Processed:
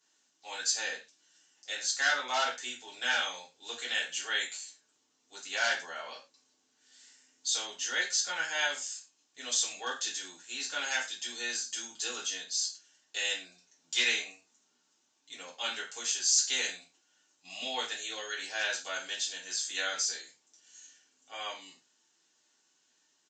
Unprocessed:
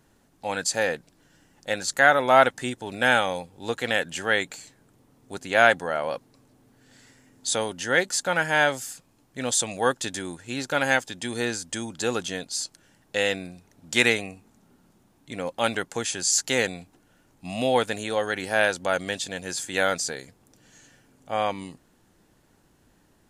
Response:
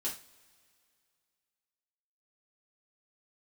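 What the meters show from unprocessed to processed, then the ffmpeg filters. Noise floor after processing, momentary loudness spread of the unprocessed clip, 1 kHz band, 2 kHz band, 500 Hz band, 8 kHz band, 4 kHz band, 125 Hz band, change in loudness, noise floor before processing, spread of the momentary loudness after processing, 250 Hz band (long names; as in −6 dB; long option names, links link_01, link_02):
−74 dBFS, 17 LU, −13.0 dB, −8.5 dB, −19.0 dB, −2.0 dB, −1.5 dB, below −30 dB, −7.0 dB, −63 dBFS, 16 LU, −21.5 dB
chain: -filter_complex "[0:a]asplit=2[link_01][link_02];[link_02]aeval=exprs='(mod(2.11*val(0)+1,2)-1)/2.11':channel_layout=same,volume=-9dB[link_03];[link_01][link_03]amix=inputs=2:normalize=0,aderivative,acrossover=split=6100[link_04][link_05];[link_05]acompressor=threshold=-34dB:ratio=4:attack=1:release=60[link_06];[link_04][link_06]amix=inputs=2:normalize=0[link_07];[1:a]atrim=start_sample=2205,atrim=end_sample=6174[link_08];[link_07][link_08]afir=irnorm=-1:irlink=0,aresample=16000,aresample=44100"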